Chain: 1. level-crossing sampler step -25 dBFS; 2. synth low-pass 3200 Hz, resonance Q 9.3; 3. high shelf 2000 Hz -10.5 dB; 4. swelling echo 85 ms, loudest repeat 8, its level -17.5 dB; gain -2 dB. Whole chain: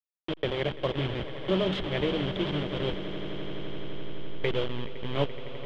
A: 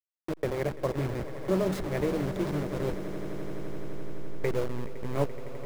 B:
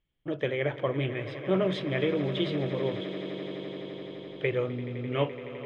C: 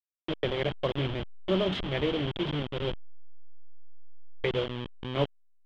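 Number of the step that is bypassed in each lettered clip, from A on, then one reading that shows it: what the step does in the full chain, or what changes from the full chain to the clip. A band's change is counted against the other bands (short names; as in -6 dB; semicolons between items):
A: 2, 4 kHz band -13.5 dB; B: 1, distortion -2 dB; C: 4, echo-to-direct -6.0 dB to none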